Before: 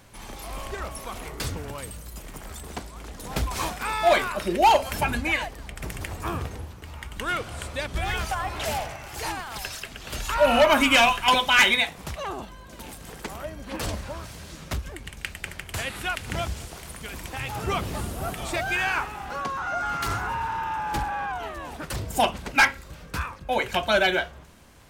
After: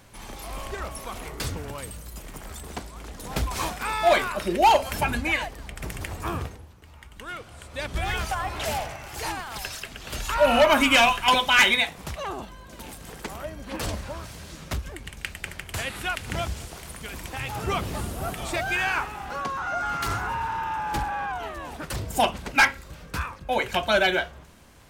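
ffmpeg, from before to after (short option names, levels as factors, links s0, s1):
-filter_complex "[0:a]asplit=3[s0][s1][s2];[s0]atrim=end=6.58,asetpts=PTS-STARTPTS,afade=t=out:st=6.42:d=0.16:silence=0.354813[s3];[s1]atrim=start=6.58:end=7.69,asetpts=PTS-STARTPTS,volume=0.355[s4];[s2]atrim=start=7.69,asetpts=PTS-STARTPTS,afade=t=in:d=0.16:silence=0.354813[s5];[s3][s4][s5]concat=n=3:v=0:a=1"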